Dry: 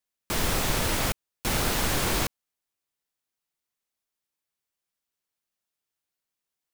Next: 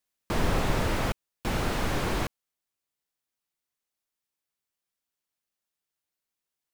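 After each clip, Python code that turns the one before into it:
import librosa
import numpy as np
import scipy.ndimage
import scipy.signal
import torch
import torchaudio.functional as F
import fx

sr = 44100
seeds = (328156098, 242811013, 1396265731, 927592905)

y = fx.rider(x, sr, range_db=10, speed_s=2.0)
y = fx.slew_limit(y, sr, full_power_hz=66.0)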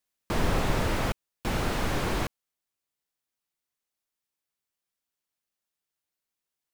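y = x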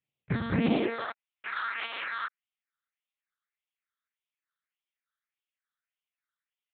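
y = fx.phaser_stages(x, sr, stages=6, low_hz=660.0, high_hz=1500.0, hz=1.7, feedback_pct=15)
y = fx.lpc_monotone(y, sr, seeds[0], pitch_hz=230.0, order=8)
y = fx.filter_sweep_highpass(y, sr, from_hz=130.0, to_hz=1300.0, start_s=0.5, end_s=1.3, q=2.6)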